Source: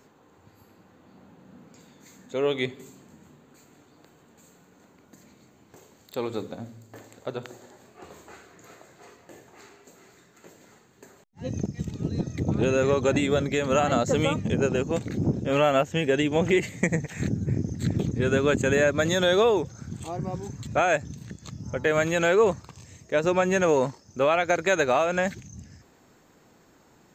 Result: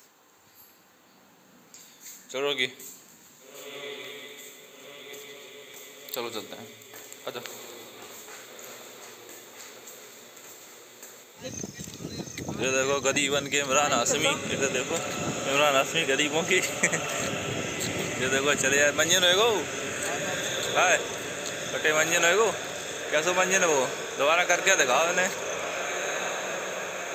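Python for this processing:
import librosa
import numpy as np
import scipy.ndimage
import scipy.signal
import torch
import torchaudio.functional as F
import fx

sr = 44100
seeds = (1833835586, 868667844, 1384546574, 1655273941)

y = fx.tilt_eq(x, sr, slope=4.0)
y = fx.echo_diffused(y, sr, ms=1433, feedback_pct=69, wet_db=-9.0)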